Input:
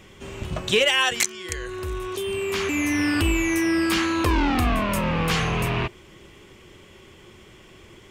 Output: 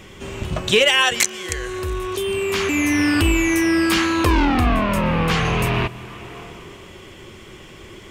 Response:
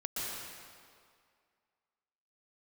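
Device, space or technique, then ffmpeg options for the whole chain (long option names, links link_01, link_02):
ducked reverb: -filter_complex "[0:a]asettb=1/sr,asplit=3[link_01][link_02][link_03];[link_01]atrim=end=4.454[link_04];[link_02]atrim=start=4.45:end=5.45,asetpts=PTS-STARTPTS,afade=type=in:duration=0.004:curve=qsin,afade=type=out:start_time=0.996:duration=0.004:curve=qsin,highshelf=frequency=4600:gain=-8.5[link_05];[link_03]atrim=start=5.446[link_06];[link_04][link_05]acrossfade=duration=0.004:curve1=hsin:curve2=qsin[link_07];[link_07][link_06]acrossfade=duration=0.004:curve1=qsin:curve2=hsin,asplit=3[link_08][link_09][link_10];[1:a]atrim=start_sample=2205[link_11];[link_09][link_11]afir=irnorm=-1:irlink=0[link_12];[link_10]apad=whole_len=357325[link_13];[link_12][link_13]sidechaincompress=threshold=-41dB:ratio=4:attack=10:release=433,volume=-5.5dB[link_14];[link_08][link_14]amix=inputs=2:normalize=0,volume=4dB"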